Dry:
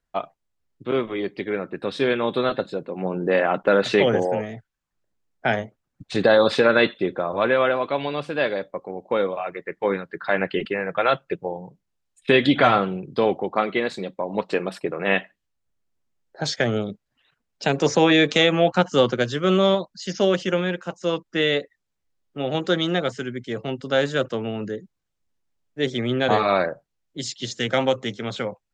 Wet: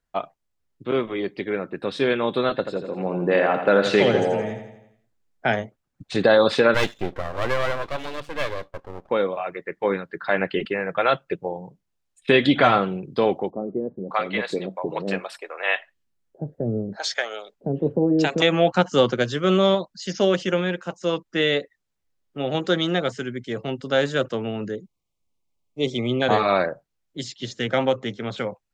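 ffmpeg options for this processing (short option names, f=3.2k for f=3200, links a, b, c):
-filter_complex "[0:a]asettb=1/sr,asplit=3[a][b][c];[a]atrim=end=2.504[d];[b]atrim=start=2.5:end=5.48,asetpts=PTS-STARTPTS,afade=t=in:d=0.004:c=qsin,afade=t=out:st=2.976:d=0.004:c=qsin,aecho=1:1:84|168|252|336|420|504:0.398|0.203|0.104|0.0528|0.0269|0.0137,atrim=end_sample=131418[e];[c]atrim=start=5.476[f];[d][e]acrossfade=d=0.004:c1=hsin:c2=qsin[g];[g][f]acrossfade=d=0.004:c1=qsin:c2=hsin,asettb=1/sr,asplit=3[h][i][j];[h]atrim=end=6.744[k];[i]atrim=start=6.74:end=9.1,asetpts=PTS-STARTPTS,afade=t=in:d=0.004:c=qsin,afade=t=out:st=2.356:d=0.004:c=qsin,aeval=exprs='max(val(0),0)':c=same[l];[j]atrim=start=9.096[m];[k][l]acrossfade=d=0.004:c1=hsin:c2=qsin[n];[n][m]acrossfade=d=0.004:c1=qsin:c2=hsin,asettb=1/sr,asplit=3[o][p][q];[o]atrim=end=13.504[r];[p]atrim=start=13.5:end=18.42,asetpts=PTS-STARTPTS,afade=t=in:d=0.004:c=qsin,afade=t=out:st=4.916:d=0.004:c=qsin,acrossover=split=550[s][t];[t]adelay=580[u];[s][u]amix=inputs=2:normalize=0,atrim=end_sample=216972[v];[q]atrim=start=18.416[w];[r][v]acrossfade=d=0.004:c1=hsin:c2=qsin[x];[x][w]acrossfade=d=0.004:c1=qsin:c2=hsin,asettb=1/sr,asplit=3[y][z][aa];[y]atrim=end=24.754[ab];[z]atrim=start=24.75:end=26.22,asetpts=PTS-STARTPTS,afade=t=in:d=0.004:c=qsin,afade=t=out:st=1.466:d=0.004:c=qsin,asuperstop=centerf=1600:order=12:qfactor=2[ac];[aa]atrim=start=26.216[ad];[ab][ac]acrossfade=d=0.004:c1=hsin:c2=qsin[ae];[ae][ad]acrossfade=d=0.004:c1=qsin:c2=hsin,asettb=1/sr,asplit=3[af][ag][ah];[af]atrim=end=27.234[ai];[ag]atrim=start=27.23:end=28.38,asetpts=PTS-STARTPTS,afade=t=in:d=0.004:c=qsin,afade=t=out:st=1.146:d=0.004:c=qsin,lowpass=f=3.1k:p=1[aj];[ah]atrim=start=28.376[ak];[ai][aj]acrossfade=d=0.004:c1=hsin:c2=qsin[al];[al][ak]acrossfade=d=0.004:c1=qsin:c2=hsin"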